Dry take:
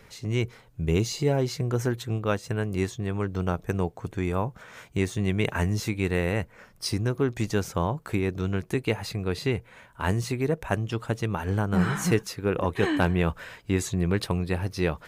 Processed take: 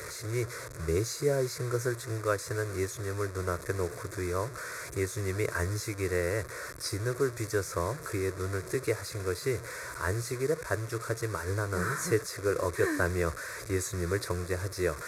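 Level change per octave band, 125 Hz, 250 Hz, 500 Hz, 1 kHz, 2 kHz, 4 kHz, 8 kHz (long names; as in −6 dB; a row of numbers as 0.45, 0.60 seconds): −6.5, −9.0, −2.0, −4.0, −1.5, −5.5, +1.5 decibels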